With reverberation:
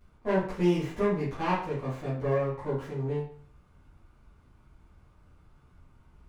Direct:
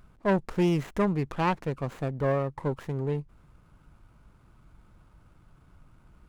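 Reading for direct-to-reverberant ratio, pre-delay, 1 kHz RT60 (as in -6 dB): -11.5 dB, 9 ms, 0.50 s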